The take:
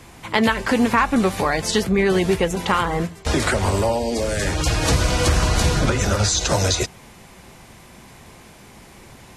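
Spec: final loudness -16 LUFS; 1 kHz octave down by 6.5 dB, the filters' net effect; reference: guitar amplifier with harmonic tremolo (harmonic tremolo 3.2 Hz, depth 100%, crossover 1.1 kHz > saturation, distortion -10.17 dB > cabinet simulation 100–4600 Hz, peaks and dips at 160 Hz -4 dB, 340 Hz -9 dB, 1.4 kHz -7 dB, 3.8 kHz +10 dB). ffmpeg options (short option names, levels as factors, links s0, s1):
-filter_complex "[0:a]equalizer=f=1000:t=o:g=-6.5,acrossover=split=1100[s0][s1];[s0]aeval=exprs='val(0)*(1-1/2+1/2*cos(2*PI*3.2*n/s))':c=same[s2];[s1]aeval=exprs='val(0)*(1-1/2-1/2*cos(2*PI*3.2*n/s))':c=same[s3];[s2][s3]amix=inputs=2:normalize=0,asoftclip=threshold=0.0841,highpass=100,equalizer=f=160:t=q:w=4:g=-4,equalizer=f=340:t=q:w=4:g=-9,equalizer=f=1400:t=q:w=4:g=-7,equalizer=f=3800:t=q:w=4:g=10,lowpass=f=4600:w=0.5412,lowpass=f=4600:w=1.3066,volume=4.47"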